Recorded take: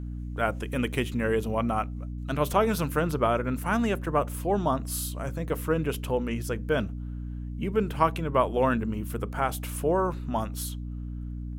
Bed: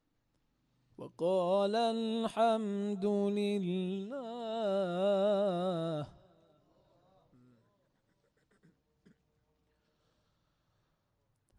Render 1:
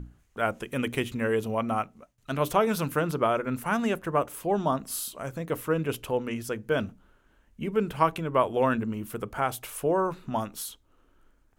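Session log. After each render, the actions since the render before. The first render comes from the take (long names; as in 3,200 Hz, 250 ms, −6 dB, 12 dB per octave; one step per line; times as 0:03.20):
mains-hum notches 60/120/180/240/300 Hz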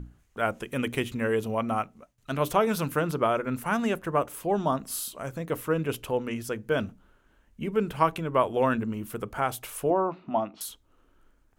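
0:09.90–0:10.61: loudspeaker in its box 130–3,800 Hz, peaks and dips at 130 Hz −10 dB, 320 Hz +4 dB, 460 Hz −7 dB, 680 Hz +8 dB, 1,600 Hz −9 dB, 3,600 Hz −7 dB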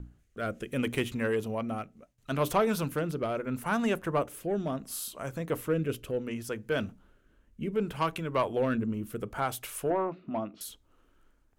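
soft clipping −16.5 dBFS, distortion −17 dB
rotating-speaker cabinet horn 0.7 Hz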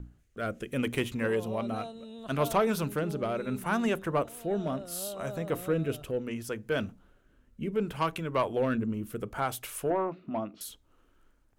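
mix in bed −10.5 dB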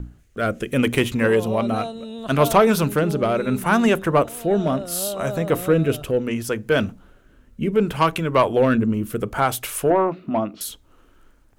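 level +11 dB
brickwall limiter −3 dBFS, peak gain reduction 1 dB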